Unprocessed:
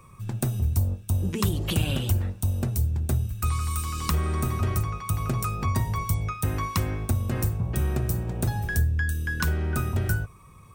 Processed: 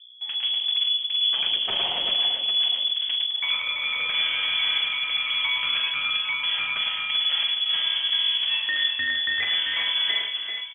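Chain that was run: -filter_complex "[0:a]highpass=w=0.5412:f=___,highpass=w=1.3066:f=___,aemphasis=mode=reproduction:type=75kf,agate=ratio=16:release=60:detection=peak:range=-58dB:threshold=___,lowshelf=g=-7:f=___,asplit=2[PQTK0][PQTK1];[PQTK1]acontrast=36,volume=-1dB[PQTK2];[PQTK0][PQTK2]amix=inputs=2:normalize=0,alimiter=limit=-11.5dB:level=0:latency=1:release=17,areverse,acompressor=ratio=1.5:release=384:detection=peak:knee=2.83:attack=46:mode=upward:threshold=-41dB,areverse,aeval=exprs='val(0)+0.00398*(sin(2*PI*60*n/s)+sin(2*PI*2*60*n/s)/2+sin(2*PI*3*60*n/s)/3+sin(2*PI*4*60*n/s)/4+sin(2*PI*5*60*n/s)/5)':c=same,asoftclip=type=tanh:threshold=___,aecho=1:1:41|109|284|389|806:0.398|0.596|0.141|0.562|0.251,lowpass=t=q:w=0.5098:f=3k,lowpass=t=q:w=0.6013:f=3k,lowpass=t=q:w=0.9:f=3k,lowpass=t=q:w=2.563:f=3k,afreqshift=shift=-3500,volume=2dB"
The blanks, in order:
85, 85, -39dB, 450, -25.5dB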